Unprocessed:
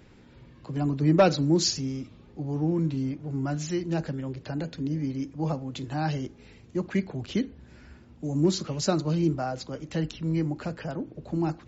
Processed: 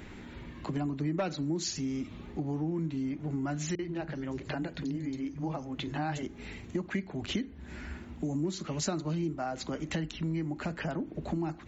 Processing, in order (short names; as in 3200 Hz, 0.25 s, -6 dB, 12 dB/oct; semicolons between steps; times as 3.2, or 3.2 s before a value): thirty-one-band EQ 125 Hz -10 dB, 500 Hz -7 dB, 2000 Hz +4 dB, 5000 Hz -7 dB; compressor 5:1, threshold -40 dBFS, peak gain reduction 21 dB; 3.75–6.23 three bands offset in time lows, mids, highs 40/400 ms, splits 190/5000 Hz; gain +8.5 dB